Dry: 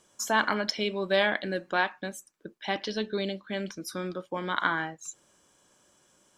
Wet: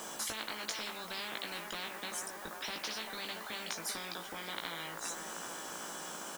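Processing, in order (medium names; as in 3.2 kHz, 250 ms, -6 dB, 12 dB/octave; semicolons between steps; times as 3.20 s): elliptic band-pass 180–9800 Hz; peaking EQ 860 Hz +13.5 dB 0.75 oct; compression 2:1, threshold -42 dBFS, peak gain reduction 16.5 dB; word length cut 12-bit, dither triangular; doubling 18 ms -4 dB; feedback echo behind a band-pass 391 ms, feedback 54%, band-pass 700 Hz, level -12.5 dB; spectrum-flattening compressor 10:1; trim -2 dB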